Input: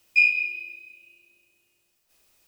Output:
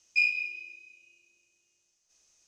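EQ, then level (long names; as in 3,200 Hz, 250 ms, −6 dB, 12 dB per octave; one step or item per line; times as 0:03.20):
low-pass with resonance 6,300 Hz, resonance Q 8.6
−8.0 dB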